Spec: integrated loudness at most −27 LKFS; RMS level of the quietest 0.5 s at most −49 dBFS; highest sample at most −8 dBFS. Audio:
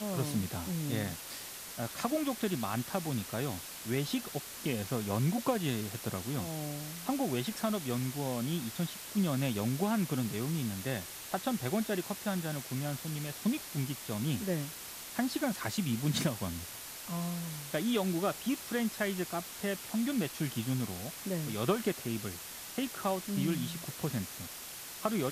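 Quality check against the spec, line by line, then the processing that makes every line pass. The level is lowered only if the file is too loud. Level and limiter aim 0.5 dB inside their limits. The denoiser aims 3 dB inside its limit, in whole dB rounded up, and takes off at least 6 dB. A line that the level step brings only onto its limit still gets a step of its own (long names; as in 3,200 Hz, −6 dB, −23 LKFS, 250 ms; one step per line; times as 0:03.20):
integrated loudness −34.5 LKFS: in spec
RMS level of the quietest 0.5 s −45 dBFS: out of spec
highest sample −16.5 dBFS: in spec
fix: broadband denoise 7 dB, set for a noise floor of −45 dBFS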